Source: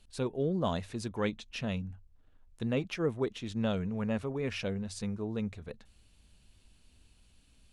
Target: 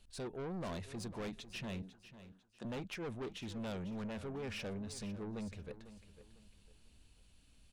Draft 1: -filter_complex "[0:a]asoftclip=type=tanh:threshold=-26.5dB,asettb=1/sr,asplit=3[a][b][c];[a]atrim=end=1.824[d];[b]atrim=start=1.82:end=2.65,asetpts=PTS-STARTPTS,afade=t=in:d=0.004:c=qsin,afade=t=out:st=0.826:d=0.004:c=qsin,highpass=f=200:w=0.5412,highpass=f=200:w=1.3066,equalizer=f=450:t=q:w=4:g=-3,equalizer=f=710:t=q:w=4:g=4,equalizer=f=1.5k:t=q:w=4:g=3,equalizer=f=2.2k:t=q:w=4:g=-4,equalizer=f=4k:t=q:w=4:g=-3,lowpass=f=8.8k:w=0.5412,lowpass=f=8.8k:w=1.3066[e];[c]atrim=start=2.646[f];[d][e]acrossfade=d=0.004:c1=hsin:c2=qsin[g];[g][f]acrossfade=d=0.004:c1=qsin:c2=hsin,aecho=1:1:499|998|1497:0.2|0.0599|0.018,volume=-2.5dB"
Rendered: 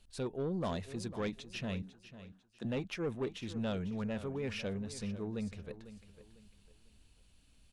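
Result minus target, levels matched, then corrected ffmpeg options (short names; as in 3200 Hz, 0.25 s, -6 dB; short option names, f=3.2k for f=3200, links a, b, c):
soft clip: distortion -8 dB
-filter_complex "[0:a]asoftclip=type=tanh:threshold=-36.5dB,asettb=1/sr,asplit=3[a][b][c];[a]atrim=end=1.824[d];[b]atrim=start=1.82:end=2.65,asetpts=PTS-STARTPTS,afade=t=in:d=0.004:c=qsin,afade=t=out:st=0.826:d=0.004:c=qsin,highpass=f=200:w=0.5412,highpass=f=200:w=1.3066,equalizer=f=450:t=q:w=4:g=-3,equalizer=f=710:t=q:w=4:g=4,equalizer=f=1.5k:t=q:w=4:g=3,equalizer=f=2.2k:t=q:w=4:g=-4,equalizer=f=4k:t=q:w=4:g=-3,lowpass=f=8.8k:w=0.5412,lowpass=f=8.8k:w=1.3066[e];[c]atrim=start=2.646[f];[d][e]acrossfade=d=0.004:c1=hsin:c2=qsin[g];[g][f]acrossfade=d=0.004:c1=qsin:c2=hsin,aecho=1:1:499|998|1497:0.2|0.0599|0.018,volume=-2.5dB"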